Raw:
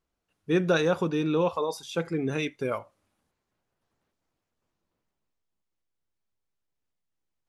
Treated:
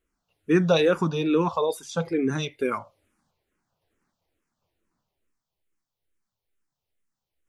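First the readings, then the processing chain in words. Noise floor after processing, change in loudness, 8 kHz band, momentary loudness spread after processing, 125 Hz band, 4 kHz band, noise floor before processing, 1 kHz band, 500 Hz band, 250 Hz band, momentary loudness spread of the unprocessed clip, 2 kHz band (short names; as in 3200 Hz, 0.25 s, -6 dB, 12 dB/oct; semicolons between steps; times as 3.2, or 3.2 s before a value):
under -85 dBFS, +3.5 dB, +3.0 dB, 9 LU, +3.5 dB, +4.0 dB, -83 dBFS, +3.5 dB, +3.0 dB, +3.5 dB, 8 LU, +1.0 dB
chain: endless phaser -2.3 Hz; gain +6 dB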